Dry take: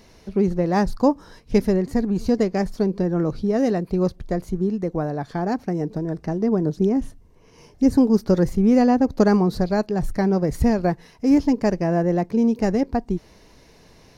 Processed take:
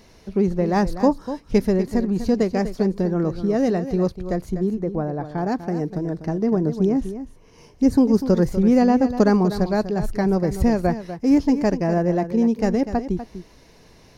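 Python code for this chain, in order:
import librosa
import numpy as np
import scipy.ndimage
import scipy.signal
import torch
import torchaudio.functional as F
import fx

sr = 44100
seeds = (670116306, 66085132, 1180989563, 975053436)

y = fx.high_shelf(x, sr, hz=2200.0, db=-10.5, at=(4.7, 5.38))
y = y + 10.0 ** (-11.5 / 20.0) * np.pad(y, (int(246 * sr / 1000.0), 0))[:len(y)]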